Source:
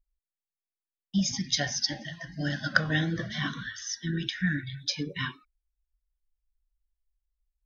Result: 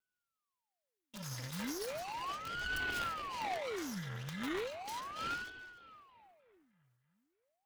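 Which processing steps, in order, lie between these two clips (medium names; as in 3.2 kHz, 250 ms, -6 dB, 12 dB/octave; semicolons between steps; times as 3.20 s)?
comb filter that takes the minimum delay 2.7 ms; 2.42–4.91 s: treble shelf 4.9 kHz -9 dB; integer overflow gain 22 dB; compression 4:1, threshold -46 dBFS, peak gain reduction 16.5 dB; high-pass 480 Hz 24 dB/octave; peaking EQ 1.3 kHz +9.5 dB 0.78 oct; half-wave rectifier; two-band feedback delay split 2.7 kHz, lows 309 ms, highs 141 ms, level -15 dB; reverberation, pre-delay 6 ms, DRR 11.5 dB; transient shaper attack -5 dB, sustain +11 dB; ring modulator with a swept carrier 810 Hz, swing 85%, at 0.36 Hz; trim +7.5 dB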